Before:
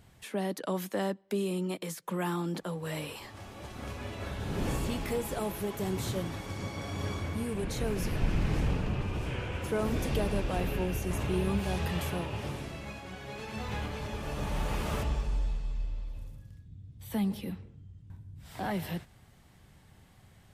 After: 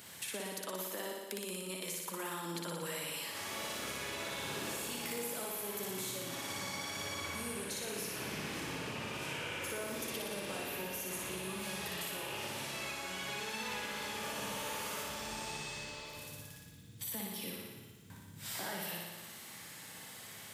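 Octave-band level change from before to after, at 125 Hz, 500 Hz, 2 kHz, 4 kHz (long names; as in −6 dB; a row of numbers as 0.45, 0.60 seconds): −15.5, −7.5, +0.5, +3.0 decibels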